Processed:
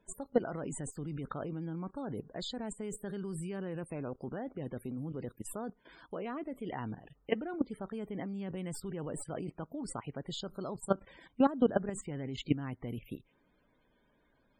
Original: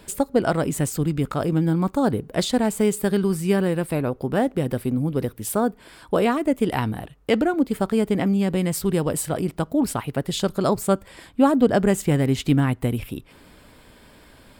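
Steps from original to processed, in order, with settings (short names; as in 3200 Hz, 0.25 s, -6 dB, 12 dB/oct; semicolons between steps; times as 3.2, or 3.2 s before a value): tracing distortion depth 0.052 ms; bell 78 Hz -12 dB 0.61 oct; level quantiser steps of 16 dB; vibrato 2.7 Hz 7.4 cents; loudest bins only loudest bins 64; gain -6.5 dB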